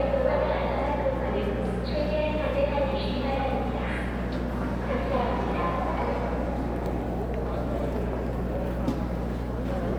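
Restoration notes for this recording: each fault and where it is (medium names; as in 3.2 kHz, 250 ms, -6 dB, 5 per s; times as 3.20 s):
hum 60 Hz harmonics 5 -32 dBFS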